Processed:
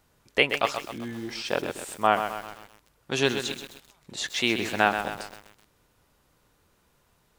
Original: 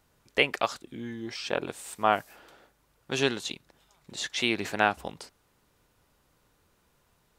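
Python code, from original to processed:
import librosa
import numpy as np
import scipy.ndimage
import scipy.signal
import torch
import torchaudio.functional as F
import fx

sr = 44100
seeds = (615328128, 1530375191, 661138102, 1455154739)

y = fx.echo_crushed(x, sr, ms=129, feedback_pct=55, bits=7, wet_db=-8.0)
y = y * librosa.db_to_amplitude(2.0)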